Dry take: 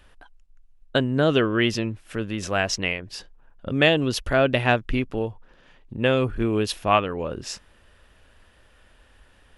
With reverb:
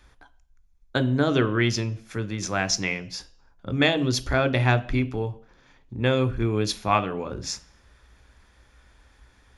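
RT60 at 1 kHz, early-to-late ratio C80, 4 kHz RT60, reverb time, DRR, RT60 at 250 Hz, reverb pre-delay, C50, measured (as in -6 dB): 0.50 s, 22.5 dB, 0.60 s, 0.50 s, 11.5 dB, 0.55 s, 13 ms, 18.0 dB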